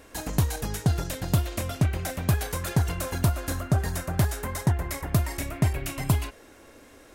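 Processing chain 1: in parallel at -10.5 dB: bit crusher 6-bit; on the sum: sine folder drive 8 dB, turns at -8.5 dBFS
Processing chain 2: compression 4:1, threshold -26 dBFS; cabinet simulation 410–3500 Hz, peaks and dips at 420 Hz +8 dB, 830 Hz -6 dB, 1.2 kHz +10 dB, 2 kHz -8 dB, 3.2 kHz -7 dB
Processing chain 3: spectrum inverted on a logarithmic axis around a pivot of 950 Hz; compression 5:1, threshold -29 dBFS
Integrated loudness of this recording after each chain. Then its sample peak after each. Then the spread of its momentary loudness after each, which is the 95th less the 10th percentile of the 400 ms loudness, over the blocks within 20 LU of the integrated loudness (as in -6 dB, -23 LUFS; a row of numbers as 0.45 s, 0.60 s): -17.0 LUFS, -38.0 LUFS, -33.5 LUFS; -7.0 dBFS, -14.0 dBFS, -17.5 dBFS; 2 LU, 4 LU, 3 LU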